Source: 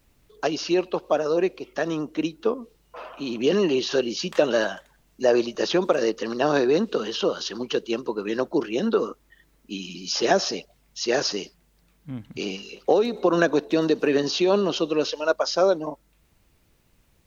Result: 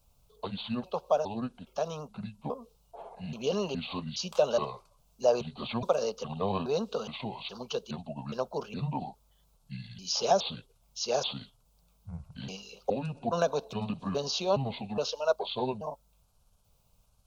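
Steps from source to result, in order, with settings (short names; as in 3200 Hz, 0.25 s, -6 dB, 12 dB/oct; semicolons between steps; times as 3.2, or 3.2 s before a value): trilling pitch shifter -7 st, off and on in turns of 0.416 s; fixed phaser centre 770 Hz, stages 4; gain -2.5 dB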